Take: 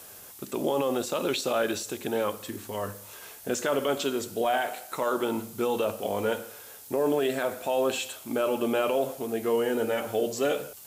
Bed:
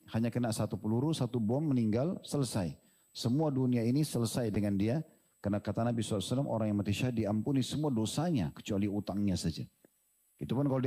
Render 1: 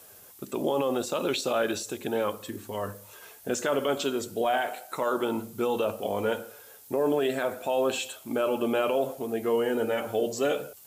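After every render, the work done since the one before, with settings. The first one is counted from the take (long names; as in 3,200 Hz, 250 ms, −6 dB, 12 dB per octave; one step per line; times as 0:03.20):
broadband denoise 6 dB, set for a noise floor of −47 dBFS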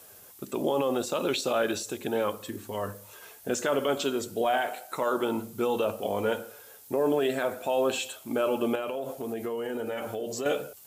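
0:08.75–0:10.46: downward compressor, threshold −29 dBFS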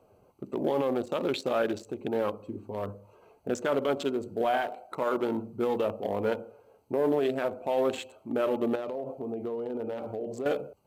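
adaptive Wiener filter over 25 samples
high-shelf EQ 4,000 Hz −5.5 dB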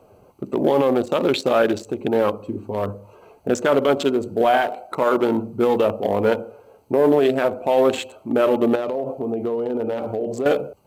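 level +10 dB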